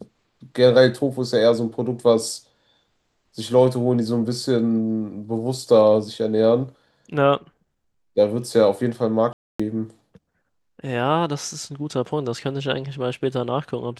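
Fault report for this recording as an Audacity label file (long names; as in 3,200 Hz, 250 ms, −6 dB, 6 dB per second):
9.330000	9.600000	drop-out 265 ms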